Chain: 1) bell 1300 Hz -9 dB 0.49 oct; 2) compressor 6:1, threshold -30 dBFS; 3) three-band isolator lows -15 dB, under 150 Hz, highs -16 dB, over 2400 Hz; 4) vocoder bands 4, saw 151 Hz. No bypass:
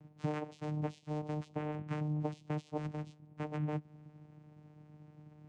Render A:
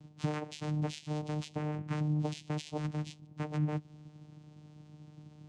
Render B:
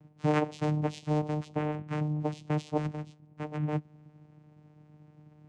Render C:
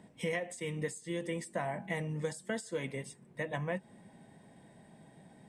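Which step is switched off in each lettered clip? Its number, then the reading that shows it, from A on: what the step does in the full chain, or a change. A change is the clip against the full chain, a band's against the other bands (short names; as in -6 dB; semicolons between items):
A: 3, 4 kHz band +8.5 dB; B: 2, crest factor change +1.5 dB; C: 4, 2 kHz band +11.5 dB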